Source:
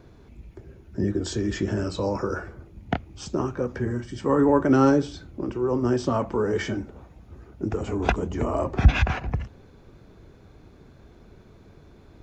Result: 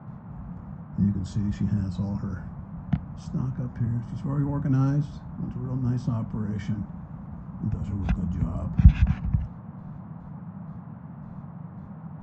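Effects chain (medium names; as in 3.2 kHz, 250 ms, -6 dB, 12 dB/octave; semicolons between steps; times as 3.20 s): gate with hold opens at -39 dBFS; band noise 87–1100 Hz -37 dBFS; resonant low shelf 260 Hz +13.5 dB, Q 3; trim -13.5 dB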